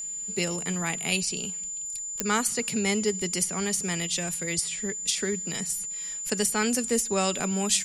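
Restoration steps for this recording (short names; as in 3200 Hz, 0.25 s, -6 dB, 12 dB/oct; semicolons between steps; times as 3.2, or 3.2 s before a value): de-click; notch 7100 Hz, Q 30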